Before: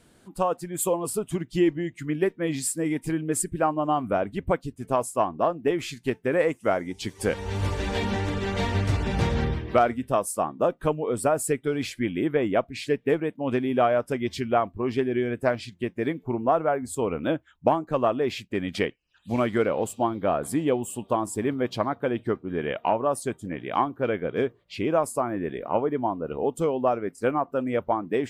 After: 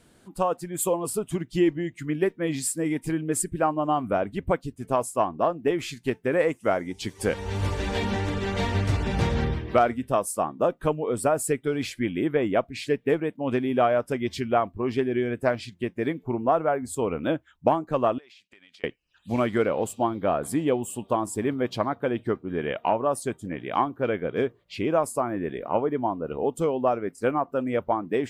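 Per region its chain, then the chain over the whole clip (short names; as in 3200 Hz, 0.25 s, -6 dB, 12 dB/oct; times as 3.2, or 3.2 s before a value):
18.18–18.84 band-pass 4000 Hz, Q 0.77 + compressor 16:1, threshold -49 dBFS
whole clip: dry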